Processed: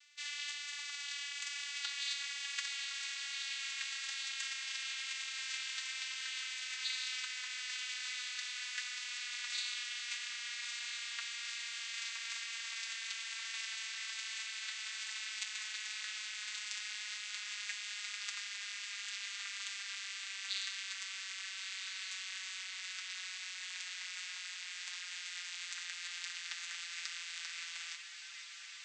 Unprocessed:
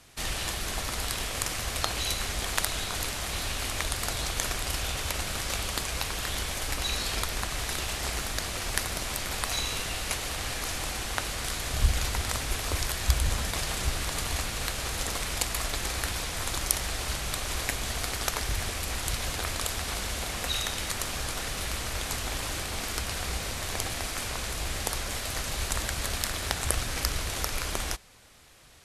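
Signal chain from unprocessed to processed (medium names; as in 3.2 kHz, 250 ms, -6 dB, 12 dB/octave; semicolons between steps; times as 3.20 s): vocoder on a note that slides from D4, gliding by -10 st; flange 1.1 Hz, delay 4.3 ms, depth 6.8 ms, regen -43%; echo that smears into a reverb 1350 ms, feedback 47%, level -6 dB; reverse; upward compressor, threshold -43 dBFS; reverse; inverse Chebyshev high-pass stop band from 320 Hz, stop band 80 dB; trim +2.5 dB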